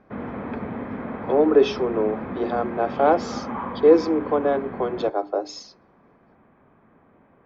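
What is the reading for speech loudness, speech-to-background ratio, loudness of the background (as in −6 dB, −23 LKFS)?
−22.0 LKFS, 10.5 dB, −32.5 LKFS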